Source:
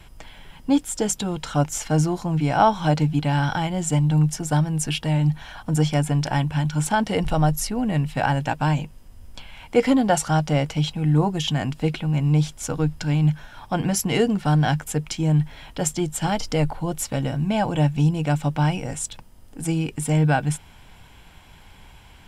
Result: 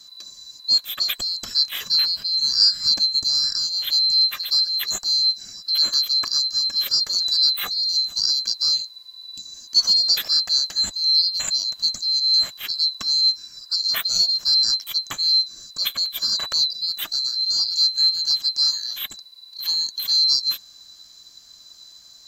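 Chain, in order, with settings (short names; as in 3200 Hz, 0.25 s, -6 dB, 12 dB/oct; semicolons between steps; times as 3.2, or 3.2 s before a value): band-swap scrambler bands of 4000 Hz; spectral repair 9.13–9.43, 340–2500 Hz before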